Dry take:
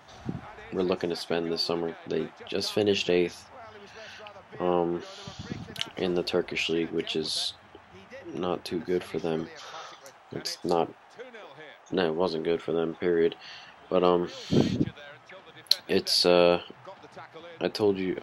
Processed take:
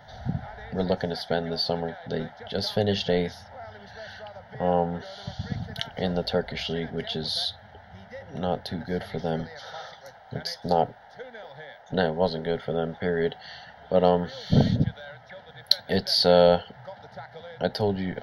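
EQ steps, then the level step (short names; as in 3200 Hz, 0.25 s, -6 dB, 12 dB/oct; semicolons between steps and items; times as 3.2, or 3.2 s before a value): tilt -1.5 dB/oct; fixed phaser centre 1700 Hz, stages 8; +5.5 dB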